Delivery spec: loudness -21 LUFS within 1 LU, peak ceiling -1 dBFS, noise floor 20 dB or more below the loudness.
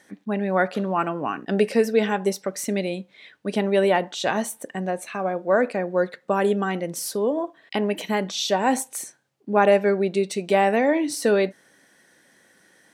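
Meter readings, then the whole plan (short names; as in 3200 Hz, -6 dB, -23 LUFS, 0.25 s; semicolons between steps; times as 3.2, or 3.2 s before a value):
loudness -23.5 LUFS; peak -4.5 dBFS; loudness target -21.0 LUFS
-> gain +2.5 dB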